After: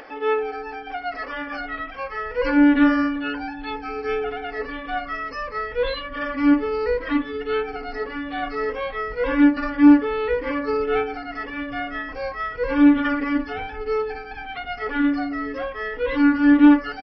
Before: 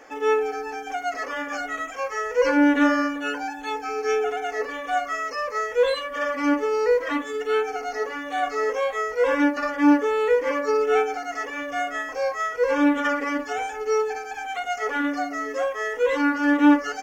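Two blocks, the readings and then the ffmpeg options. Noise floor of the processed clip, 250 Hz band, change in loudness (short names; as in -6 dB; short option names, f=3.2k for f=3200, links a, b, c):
-36 dBFS, +5.0 dB, +1.5 dB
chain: -af "acompressor=mode=upward:threshold=-36dB:ratio=2.5,asubboost=boost=9.5:cutoff=180,aresample=11025,aresample=44100"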